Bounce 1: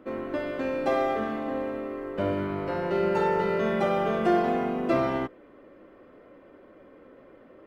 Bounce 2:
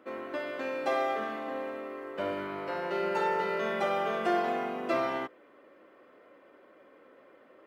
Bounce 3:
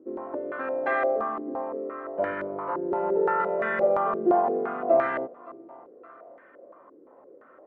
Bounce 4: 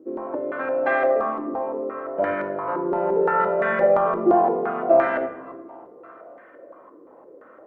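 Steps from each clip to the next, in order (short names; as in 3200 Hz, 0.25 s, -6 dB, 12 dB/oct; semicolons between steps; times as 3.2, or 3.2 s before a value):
HPF 760 Hz 6 dB/oct
thinning echo 0.569 s, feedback 38%, high-pass 150 Hz, level -19 dB; stepped low-pass 5.8 Hz 360–1700 Hz
shoebox room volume 440 m³, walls mixed, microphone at 0.59 m; gain +4 dB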